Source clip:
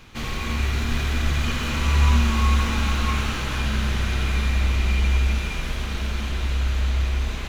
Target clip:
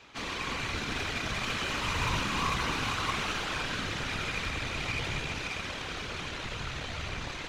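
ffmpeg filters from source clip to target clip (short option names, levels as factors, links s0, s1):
-filter_complex "[0:a]acrossover=split=260 7900:gain=0.178 1 0.112[s0][s1][s2];[s0][s1][s2]amix=inputs=3:normalize=0,aeval=exprs='0.188*(cos(1*acos(clip(val(0)/0.188,-1,1)))-cos(1*PI/2))+0.015*(cos(8*acos(clip(val(0)/0.188,-1,1)))-cos(8*PI/2))':c=same,afftfilt=real='hypot(re,im)*cos(2*PI*random(0))':imag='hypot(re,im)*sin(2*PI*random(1))':win_size=512:overlap=0.75,volume=1.33"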